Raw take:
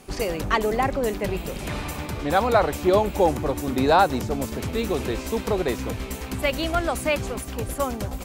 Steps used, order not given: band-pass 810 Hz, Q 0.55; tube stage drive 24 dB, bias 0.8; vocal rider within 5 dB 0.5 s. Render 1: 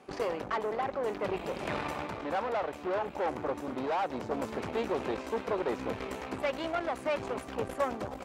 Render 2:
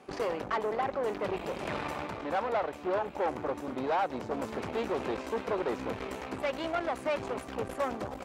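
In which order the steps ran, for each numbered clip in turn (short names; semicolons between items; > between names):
tube stage > band-pass > vocal rider; vocal rider > tube stage > band-pass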